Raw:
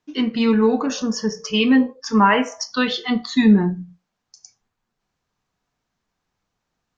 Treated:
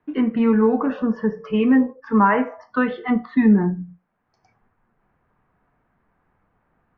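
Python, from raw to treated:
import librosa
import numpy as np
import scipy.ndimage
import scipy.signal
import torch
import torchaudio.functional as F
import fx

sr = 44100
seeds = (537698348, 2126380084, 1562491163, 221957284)

y = scipy.signal.sosfilt(scipy.signal.butter(4, 1900.0, 'lowpass', fs=sr, output='sos'), x)
y = fx.band_squash(y, sr, depth_pct=40)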